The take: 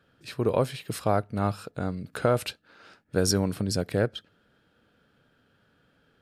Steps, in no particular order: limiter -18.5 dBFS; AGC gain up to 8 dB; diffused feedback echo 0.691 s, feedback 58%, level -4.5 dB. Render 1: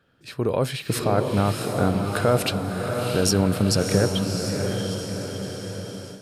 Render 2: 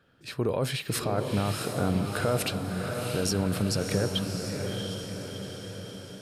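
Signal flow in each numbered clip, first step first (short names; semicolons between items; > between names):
limiter > diffused feedback echo > AGC; AGC > limiter > diffused feedback echo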